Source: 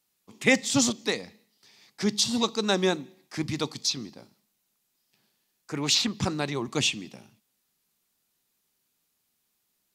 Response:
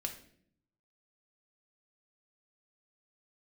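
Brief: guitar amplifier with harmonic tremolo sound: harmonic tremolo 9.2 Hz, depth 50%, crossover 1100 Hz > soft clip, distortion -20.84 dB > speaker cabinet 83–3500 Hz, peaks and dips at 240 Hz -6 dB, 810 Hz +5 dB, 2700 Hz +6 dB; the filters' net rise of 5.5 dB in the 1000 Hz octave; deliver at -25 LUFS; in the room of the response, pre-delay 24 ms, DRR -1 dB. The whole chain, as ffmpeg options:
-filter_complex "[0:a]equalizer=f=1k:t=o:g=3.5,asplit=2[a][b];[1:a]atrim=start_sample=2205,adelay=24[c];[b][c]afir=irnorm=-1:irlink=0,volume=1dB[d];[a][d]amix=inputs=2:normalize=0,acrossover=split=1100[e][f];[e]aeval=exprs='val(0)*(1-0.5/2+0.5/2*cos(2*PI*9.2*n/s))':c=same[g];[f]aeval=exprs='val(0)*(1-0.5/2-0.5/2*cos(2*PI*9.2*n/s))':c=same[h];[g][h]amix=inputs=2:normalize=0,asoftclip=threshold=-12dB,highpass=83,equalizer=f=240:t=q:w=4:g=-6,equalizer=f=810:t=q:w=4:g=5,equalizer=f=2.7k:t=q:w=4:g=6,lowpass=f=3.5k:w=0.5412,lowpass=f=3.5k:w=1.3066,volume=2dB"

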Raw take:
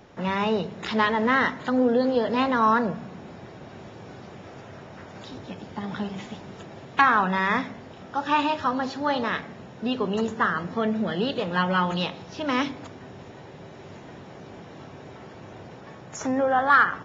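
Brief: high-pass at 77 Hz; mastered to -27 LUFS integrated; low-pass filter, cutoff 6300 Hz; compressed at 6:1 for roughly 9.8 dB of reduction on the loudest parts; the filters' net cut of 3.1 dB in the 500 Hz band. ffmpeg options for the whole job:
-af "highpass=77,lowpass=6.3k,equalizer=f=500:t=o:g=-3.5,acompressor=threshold=-24dB:ratio=6,volume=3dB"

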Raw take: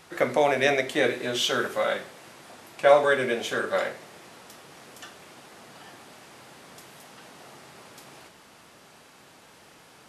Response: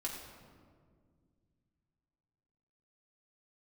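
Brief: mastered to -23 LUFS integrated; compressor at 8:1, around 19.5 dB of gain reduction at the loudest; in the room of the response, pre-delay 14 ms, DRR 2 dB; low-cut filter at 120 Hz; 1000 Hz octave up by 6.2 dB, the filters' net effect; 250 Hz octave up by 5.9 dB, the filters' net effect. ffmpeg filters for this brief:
-filter_complex "[0:a]highpass=120,equalizer=f=250:t=o:g=7,equalizer=f=1k:t=o:g=8.5,acompressor=threshold=-29dB:ratio=8,asplit=2[a][b];[1:a]atrim=start_sample=2205,adelay=14[c];[b][c]afir=irnorm=-1:irlink=0,volume=-2.5dB[d];[a][d]amix=inputs=2:normalize=0,volume=11dB"

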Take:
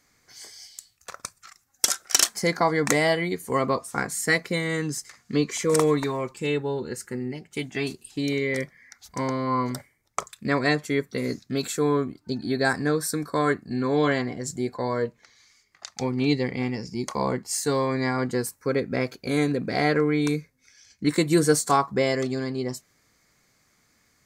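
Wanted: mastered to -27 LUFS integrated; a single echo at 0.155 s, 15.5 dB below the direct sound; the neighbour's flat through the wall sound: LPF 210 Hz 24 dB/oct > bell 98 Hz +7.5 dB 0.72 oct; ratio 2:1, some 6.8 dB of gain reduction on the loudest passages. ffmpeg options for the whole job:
-af "acompressor=threshold=-27dB:ratio=2,lowpass=f=210:w=0.5412,lowpass=f=210:w=1.3066,equalizer=f=98:t=o:w=0.72:g=7.5,aecho=1:1:155:0.168,volume=10dB"

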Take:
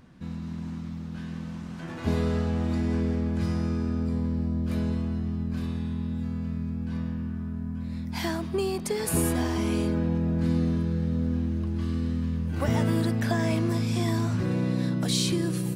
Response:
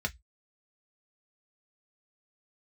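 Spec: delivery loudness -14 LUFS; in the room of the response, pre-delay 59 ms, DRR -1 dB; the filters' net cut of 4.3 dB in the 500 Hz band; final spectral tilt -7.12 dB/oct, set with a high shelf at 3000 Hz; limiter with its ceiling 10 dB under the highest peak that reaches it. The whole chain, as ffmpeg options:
-filter_complex "[0:a]equalizer=f=500:t=o:g=-6.5,highshelf=f=3k:g=8.5,alimiter=limit=-18.5dB:level=0:latency=1,asplit=2[a][b];[1:a]atrim=start_sample=2205,adelay=59[c];[b][c]afir=irnorm=-1:irlink=0,volume=-4dB[d];[a][d]amix=inputs=2:normalize=0,volume=8dB"

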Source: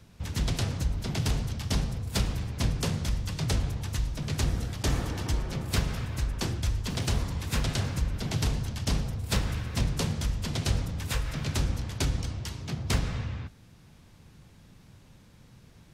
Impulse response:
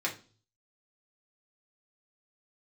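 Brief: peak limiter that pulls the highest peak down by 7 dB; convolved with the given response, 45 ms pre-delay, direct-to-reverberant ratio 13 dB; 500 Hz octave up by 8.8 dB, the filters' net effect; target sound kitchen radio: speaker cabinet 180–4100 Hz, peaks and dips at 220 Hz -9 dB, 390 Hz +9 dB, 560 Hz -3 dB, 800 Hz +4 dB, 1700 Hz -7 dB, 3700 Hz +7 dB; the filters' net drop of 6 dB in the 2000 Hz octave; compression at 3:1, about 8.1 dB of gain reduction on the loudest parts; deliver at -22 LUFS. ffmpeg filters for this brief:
-filter_complex "[0:a]equalizer=f=500:t=o:g=7,equalizer=f=2k:t=o:g=-5.5,acompressor=threshold=-32dB:ratio=3,alimiter=level_in=2dB:limit=-24dB:level=0:latency=1,volume=-2dB,asplit=2[a][b];[1:a]atrim=start_sample=2205,adelay=45[c];[b][c]afir=irnorm=-1:irlink=0,volume=-19.5dB[d];[a][d]amix=inputs=2:normalize=0,highpass=180,equalizer=f=220:t=q:w=4:g=-9,equalizer=f=390:t=q:w=4:g=9,equalizer=f=560:t=q:w=4:g=-3,equalizer=f=800:t=q:w=4:g=4,equalizer=f=1.7k:t=q:w=4:g=-7,equalizer=f=3.7k:t=q:w=4:g=7,lowpass=f=4.1k:w=0.5412,lowpass=f=4.1k:w=1.3066,volume=18.5dB"

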